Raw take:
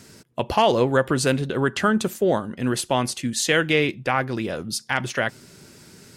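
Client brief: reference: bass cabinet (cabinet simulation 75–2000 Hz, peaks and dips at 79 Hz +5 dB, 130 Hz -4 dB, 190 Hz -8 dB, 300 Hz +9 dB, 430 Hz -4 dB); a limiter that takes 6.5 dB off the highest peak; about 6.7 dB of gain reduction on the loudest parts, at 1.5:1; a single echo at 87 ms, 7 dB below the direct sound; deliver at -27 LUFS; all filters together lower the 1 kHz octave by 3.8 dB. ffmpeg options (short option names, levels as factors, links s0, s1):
-af "equalizer=f=1000:t=o:g=-5,acompressor=threshold=0.0178:ratio=1.5,alimiter=limit=0.1:level=0:latency=1,highpass=f=75:w=0.5412,highpass=f=75:w=1.3066,equalizer=f=79:t=q:w=4:g=5,equalizer=f=130:t=q:w=4:g=-4,equalizer=f=190:t=q:w=4:g=-8,equalizer=f=300:t=q:w=4:g=9,equalizer=f=430:t=q:w=4:g=-4,lowpass=f=2000:w=0.5412,lowpass=f=2000:w=1.3066,aecho=1:1:87:0.447,volume=1.68"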